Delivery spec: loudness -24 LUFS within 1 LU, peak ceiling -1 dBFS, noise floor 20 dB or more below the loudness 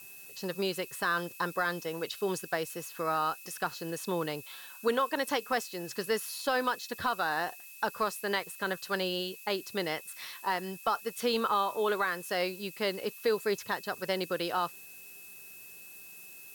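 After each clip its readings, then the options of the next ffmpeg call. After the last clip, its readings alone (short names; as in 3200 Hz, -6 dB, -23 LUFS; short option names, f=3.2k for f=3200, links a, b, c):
steady tone 2600 Hz; tone level -52 dBFS; noise floor -49 dBFS; noise floor target -53 dBFS; loudness -32.5 LUFS; peak -18.0 dBFS; loudness target -24.0 LUFS
-> -af "bandreject=f=2.6k:w=30"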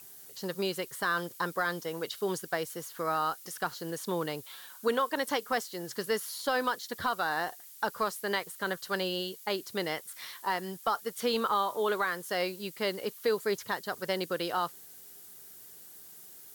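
steady tone none; noise floor -51 dBFS; noise floor target -53 dBFS
-> -af "afftdn=nr=6:nf=-51"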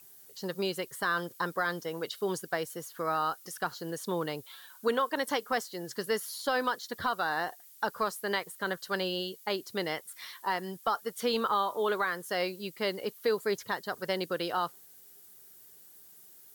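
noise floor -55 dBFS; loudness -33.0 LUFS; peak -18.0 dBFS; loudness target -24.0 LUFS
-> -af "volume=9dB"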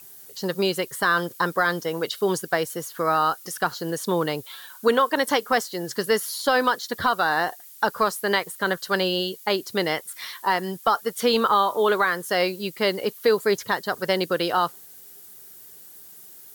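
loudness -24.0 LUFS; peak -9.0 dBFS; noise floor -46 dBFS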